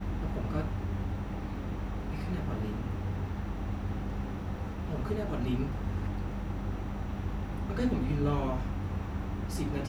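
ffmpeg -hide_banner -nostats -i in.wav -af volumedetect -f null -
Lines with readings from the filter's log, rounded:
mean_volume: -32.8 dB
max_volume: -17.9 dB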